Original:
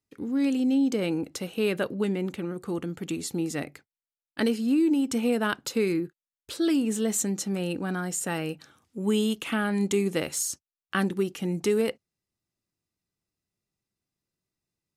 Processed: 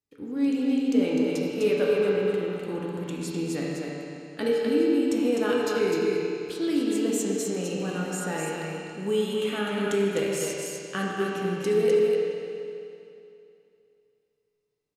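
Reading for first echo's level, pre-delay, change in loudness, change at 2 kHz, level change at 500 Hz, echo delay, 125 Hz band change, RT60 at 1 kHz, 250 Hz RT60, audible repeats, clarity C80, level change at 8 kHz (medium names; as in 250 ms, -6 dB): -4.0 dB, 7 ms, +1.0 dB, 0.0 dB, +5.5 dB, 253 ms, -1.0 dB, 2.7 s, 2.7 s, 1, -2.5 dB, -3.5 dB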